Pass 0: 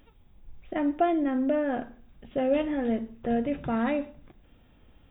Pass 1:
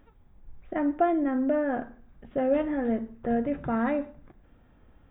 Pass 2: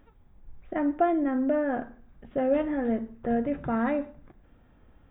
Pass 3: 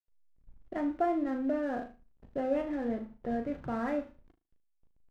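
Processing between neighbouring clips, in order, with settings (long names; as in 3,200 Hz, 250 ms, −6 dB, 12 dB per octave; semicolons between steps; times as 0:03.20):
high shelf with overshoot 2,200 Hz −7.5 dB, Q 1.5
no processing that can be heard
slack as between gear wheels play −41 dBFS; flutter between parallel walls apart 6.4 metres, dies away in 0.28 s; level −6 dB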